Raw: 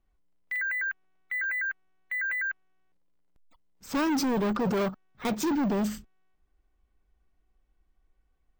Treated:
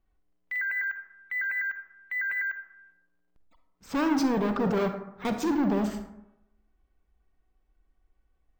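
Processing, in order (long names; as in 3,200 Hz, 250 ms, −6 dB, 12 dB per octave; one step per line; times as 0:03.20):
high-shelf EQ 6,000 Hz −10 dB
convolution reverb RT60 0.85 s, pre-delay 38 ms, DRR 6.5 dB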